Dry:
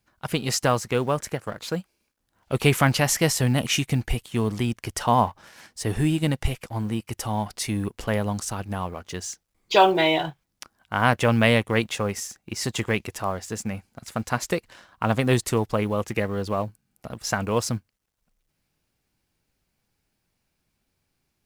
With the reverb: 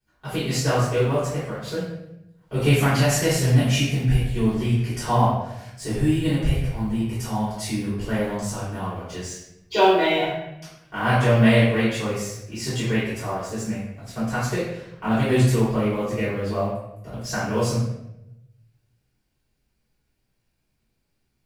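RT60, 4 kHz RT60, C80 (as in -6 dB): 0.85 s, 0.65 s, 3.5 dB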